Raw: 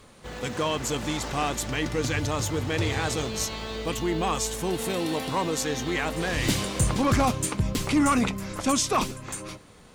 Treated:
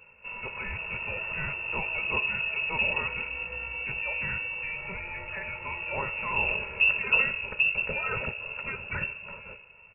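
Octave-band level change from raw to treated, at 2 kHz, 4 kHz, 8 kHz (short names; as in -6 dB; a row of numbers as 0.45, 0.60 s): +6.0 dB, -5.5 dB, under -40 dB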